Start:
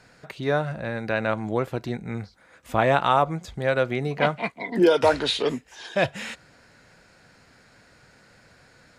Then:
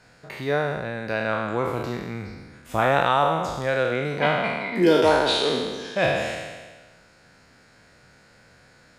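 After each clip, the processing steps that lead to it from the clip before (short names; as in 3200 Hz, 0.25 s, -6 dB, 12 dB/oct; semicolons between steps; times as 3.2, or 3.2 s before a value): spectral trails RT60 1.42 s; gain -2.5 dB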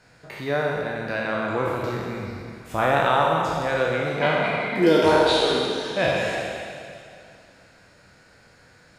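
plate-style reverb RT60 2.5 s, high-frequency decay 1×, DRR 1.5 dB; gain -1.5 dB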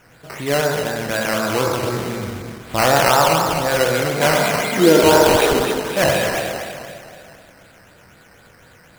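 decimation with a swept rate 10×, swing 60% 4 Hz; gain +5.5 dB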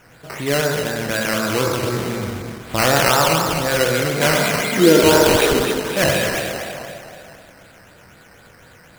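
dynamic EQ 790 Hz, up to -6 dB, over -30 dBFS, Q 1.4; gain +1.5 dB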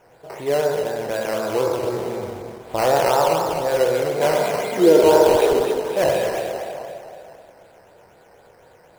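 band shelf 590 Hz +11.5 dB; gain -10 dB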